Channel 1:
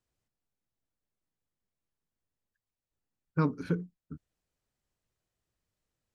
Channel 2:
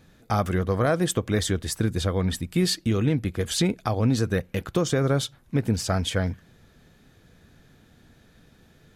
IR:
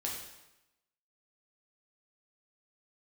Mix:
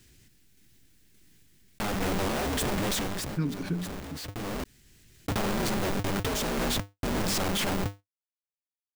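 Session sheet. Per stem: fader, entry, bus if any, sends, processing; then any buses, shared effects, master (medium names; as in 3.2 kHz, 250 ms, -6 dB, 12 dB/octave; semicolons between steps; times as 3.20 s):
-1.5 dB, 0.00 s, no send, high-order bell 790 Hz -14 dB
-3.0 dB, 1.50 s, muted 4.64–5.28 s, no send, de-hum 48.73 Hz, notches 15; Schmitt trigger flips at -38 dBFS; polarity switched at an audio rate 100 Hz; auto duck -18 dB, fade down 0.45 s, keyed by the first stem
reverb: none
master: random-step tremolo; level flattener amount 50%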